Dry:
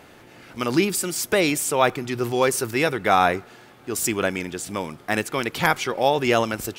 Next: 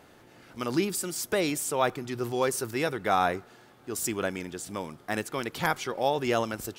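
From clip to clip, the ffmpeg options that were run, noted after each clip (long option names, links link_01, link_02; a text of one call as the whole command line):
ffmpeg -i in.wav -af "equalizer=frequency=2400:width_type=o:width=0.69:gain=-4,volume=-6.5dB" out.wav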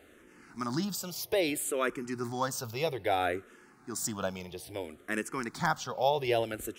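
ffmpeg -i in.wav -filter_complex "[0:a]asplit=2[link_01][link_02];[link_02]afreqshift=-0.61[link_03];[link_01][link_03]amix=inputs=2:normalize=1" out.wav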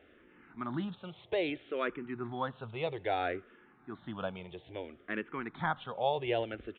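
ffmpeg -i in.wav -af "aresample=8000,aresample=44100,volume=-3.5dB" out.wav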